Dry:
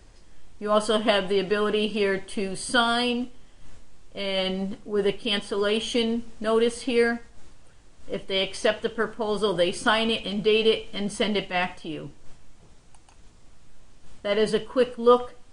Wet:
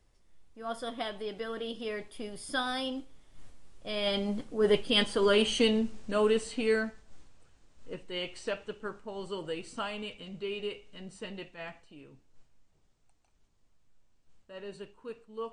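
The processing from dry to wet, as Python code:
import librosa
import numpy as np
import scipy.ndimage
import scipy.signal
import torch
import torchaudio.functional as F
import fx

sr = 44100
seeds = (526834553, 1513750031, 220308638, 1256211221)

y = fx.doppler_pass(x, sr, speed_mps=26, closest_m=22.0, pass_at_s=5.13)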